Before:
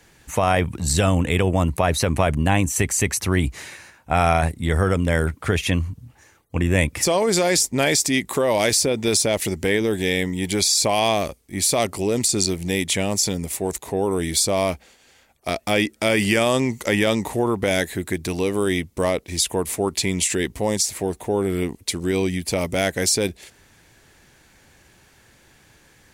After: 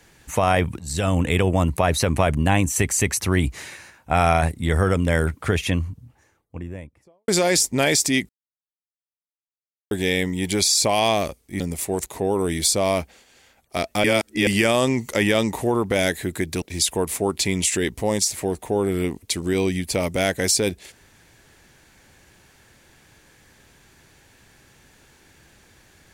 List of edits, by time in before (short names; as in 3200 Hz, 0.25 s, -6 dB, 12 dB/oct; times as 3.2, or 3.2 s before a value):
0.79–1.22 fade in, from -16 dB
5.31–7.28 studio fade out
8.29–9.91 mute
11.6–13.32 cut
15.76–16.19 reverse
18.34–19.2 cut